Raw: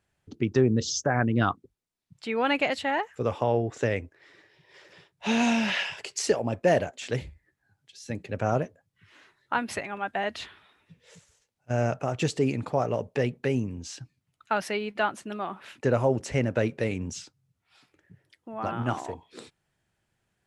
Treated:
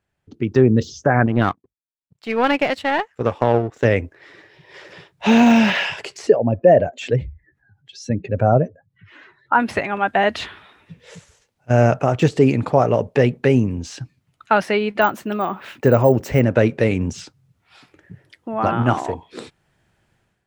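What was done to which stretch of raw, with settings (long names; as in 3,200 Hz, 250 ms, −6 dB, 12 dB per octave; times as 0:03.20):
0:01.26–0:03.85: power curve on the samples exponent 1.4
0:06.27–0:09.60: expanding power law on the bin magnitudes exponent 1.6
0:15.01–0:16.40: bad sample-rate conversion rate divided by 2×, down none, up hold
whole clip: de-essing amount 100%; high-shelf EQ 4,100 Hz −7 dB; automatic gain control gain up to 13.5 dB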